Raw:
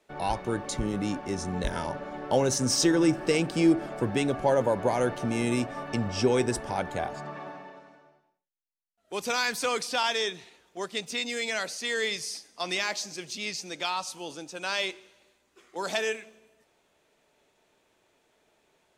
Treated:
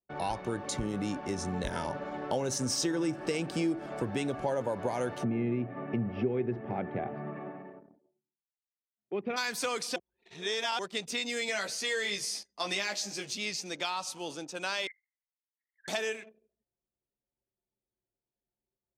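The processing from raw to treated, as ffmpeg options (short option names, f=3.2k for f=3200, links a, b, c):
-filter_complex "[0:a]asplit=3[a][b][c];[a]afade=t=out:st=5.23:d=0.02[d];[b]highpass=120,equalizer=f=120:t=q:w=4:g=9,equalizer=f=210:t=q:w=4:g=7,equalizer=f=370:t=q:w=4:g=6,equalizer=f=550:t=q:w=4:g=-3,equalizer=f=970:t=q:w=4:g=-10,equalizer=f=1.5k:t=q:w=4:g=-8,lowpass=f=2.2k:w=0.5412,lowpass=f=2.2k:w=1.3066,afade=t=in:st=5.23:d=0.02,afade=t=out:st=9.36:d=0.02[e];[c]afade=t=in:st=9.36:d=0.02[f];[d][e][f]amix=inputs=3:normalize=0,asettb=1/sr,asplit=3[g][h][i];[g]atrim=end=11.474[j];[h]atrim=start=11.47:end=13.34,asetpts=PTS-STARTPTS,afade=t=in:d=0.004:c=qsin,afade=t=out:st=1.866:d=0.004:c=qsin,asplit=2[k][l];[l]adelay=15,volume=-3.5dB[m];[k][m]amix=inputs=2:normalize=0,atrim=end_sample=82467[n];[i]atrim=start=13.336[o];[j][n]acrossfade=d=0.004:c1=hsin:c2=qsin[p];[p][o]acrossfade=d=0.004:c1=qsin:c2=hsin,asettb=1/sr,asplit=3[q][r][s];[q]atrim=end=14.874[t];[r]atrim=start=14.87:end=15.88,asetpts=PTS-STARTPTS,afade=t=in:d=0.004:c=qsin,afade=t=out:st=1.006:d=0.004:c=qsin,asuperpass=centerf=1900:order=12:qfactor=3.2[u];[s]atrim=start=15.876[v];[t][u]acrossfade=d=0.004:c1=hsin:c2=qsin[w];[w][v]acrossfade=d=0.004:c1=qsin:c2=hsin,asplit=3[x][y][z];[x]atrim=end=9.962[aa];[y]atrim=start=9.958:end=10.792,asetpts=PTS-STARTPTS,areverse[ab];[z]atrim=start=10.788[ac];[aa][ab]acrossfade=d=0.004:c1=hsin:c2=hsin[ad];[ad][ac]acrossfade=d=0.004:c1=hsin:c2=hsin,anlmdn=0.00631,highpass=56,acompressor=threshold=-30dB:ratio=3"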